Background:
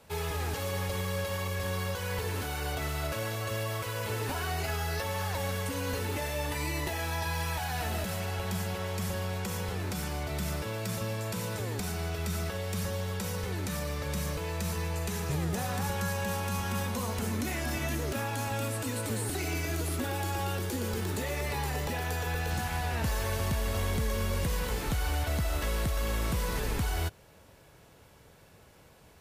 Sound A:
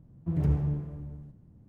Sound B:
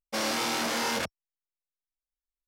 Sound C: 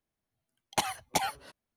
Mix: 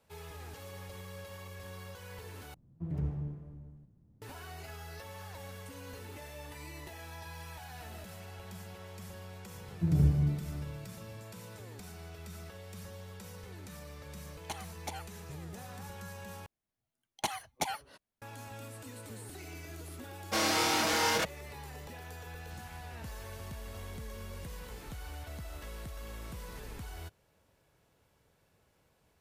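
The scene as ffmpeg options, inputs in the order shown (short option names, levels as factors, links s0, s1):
-filter_complex "[1:a]asplit=2[s0][s1];[3:a]asplit=2[s2][s3];[0:a]volume=0.211[s4];[s1]equalizer=f=130:w=0.3:g=8.5[s5];[2:a]aecho=1:1:6.3:0.7[s6];[s4]asplit=3[s7][s8][s9];[s7]atrim=end=2.544[s10];[s0]atrim=end=1.68,asetpts=PTS-STARTPTS,volume=0.376[s11];[s8]atrim=start=4.216:end=16.464[s12];[s3]atrim=end=1.76,asetpts=PTS-STARTPTS,volume=0.562[s13];[s9]atrim=start=18.216[s14];[s5]atrim=end=1.68,asetpts=PTS-STARTPTS,volume=0.422,afade=t=in:d=0.004:c=hsin,afade=t=out:st=1.676:d=0.004:c=hsin,adelay=9550[s15];[s2]atrim=end=1.76,asetpts=PTS-STARTPTS,volume=0.237,afade=t=in:d=0.004:c=hsin,afade=t=out:st=1.756:d=0.004:c=hsin,adelay=13720[s16];[s6]atrim=end=2.47,asetpts=PTS-STARTPTS,volume=0.841,afade=t=in:d=0.004:c=hsin,afade=t=out:st=2.466:d=0.004:c=hsin,adelay=20190[s17];[s10][s11]acrossfade=d=0.004:c1=hsin:c2=hsin[s18];[s18][s12]acrossfade=d=0.004:c1=hsin:c2=hsin[s19];[s19][s13]acrossfade=d=0.004:c1=hsin:c2=hsin[s20];[s20][s14]acrossfade=d=0.004:c1=hsin:c2=hsin[s21];[s21][s15][s16][s17]amix=inputs=4:normalize=0"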